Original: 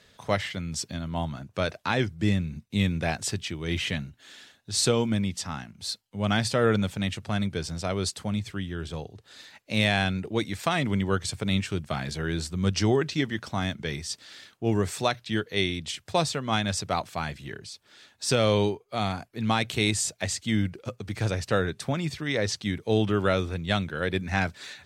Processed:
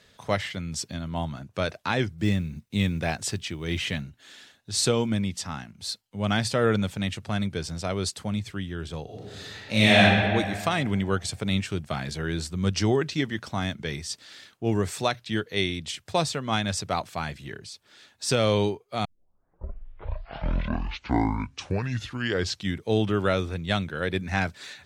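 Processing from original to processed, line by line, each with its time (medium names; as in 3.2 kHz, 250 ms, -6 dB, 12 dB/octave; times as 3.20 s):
2.18–4.01 s: companded quantiser 8-bit
9.04–10.00 s: reverb throw, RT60 2 s, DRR -7.5 dB
19.05 s: tape start 3.82 s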